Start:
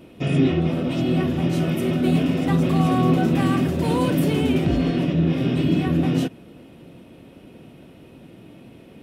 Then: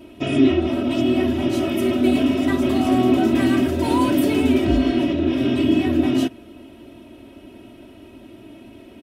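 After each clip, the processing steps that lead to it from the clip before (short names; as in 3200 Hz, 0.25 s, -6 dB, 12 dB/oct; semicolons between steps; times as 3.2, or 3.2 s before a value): comb 3.1 ms, depth 94%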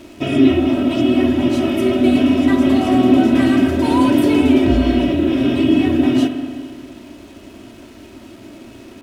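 bit-crush 8-bit; high shelf 12000 Hz -11.5 dB; spring tank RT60 2.2 s, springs 34/52 ms, chirp 70 ms, DRR 7 dB; gain +3 dB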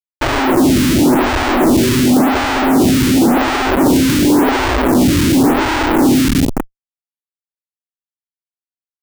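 HPF 49 Hz 12 dB/oct; Schmitt trigger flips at -21 dBFS; photocell phaser 0.92 Hz; gain +7 dB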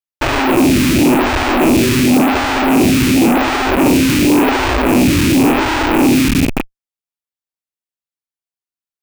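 rattling part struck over -24 dBFS, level -11 dBFS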